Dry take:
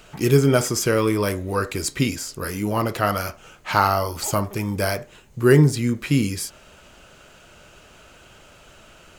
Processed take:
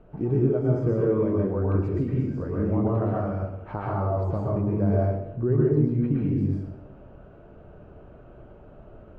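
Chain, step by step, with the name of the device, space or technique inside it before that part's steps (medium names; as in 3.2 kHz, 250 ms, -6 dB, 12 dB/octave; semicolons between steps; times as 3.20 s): television next door (compression 3:1, threshold -25 dBFS, peak gain reduction 11.5 dB; low-pass 570 Hz 12 dB/octave; reverberation RT60 0.80 s, pre-delay 109 ms, DRR -4.5 dB)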